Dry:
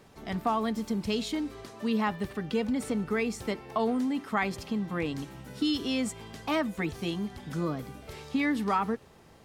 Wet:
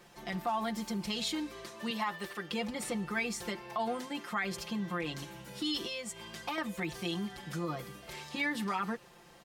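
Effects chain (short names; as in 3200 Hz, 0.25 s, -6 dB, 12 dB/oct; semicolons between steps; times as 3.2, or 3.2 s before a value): 1.9–2.5 tone controls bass -12 dB, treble +1 dB; 5.83–6.58 compressor 6:1, threshold -34 dBFS, peak gain reduction 10 dB; comb 5.7 ms, depth 90%; limiter -21.5 dBFS, peak gain reduction 9.5 dB; low shelf 480 Hz -9 dB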